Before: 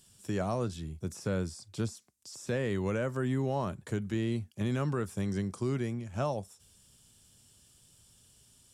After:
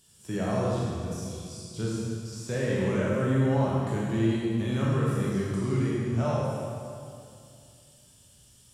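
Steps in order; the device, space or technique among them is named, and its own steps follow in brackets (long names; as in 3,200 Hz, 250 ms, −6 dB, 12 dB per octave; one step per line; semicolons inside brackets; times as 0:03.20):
0:01.07–0:01.76: inverse Chebyshev high-pass filter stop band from 1,600 Hz, stop band 40 dB
stairwell (convolution reverb RT60 2.4 s, pre-delay 14 ms, DRR −5.5 dB)
harmonic and percussive parts rebalanced percussive −5 dB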